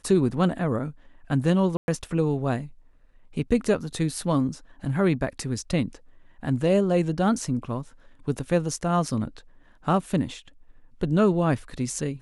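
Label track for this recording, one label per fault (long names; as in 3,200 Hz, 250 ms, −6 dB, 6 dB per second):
1.770000	1.880000	drop-out 111 ms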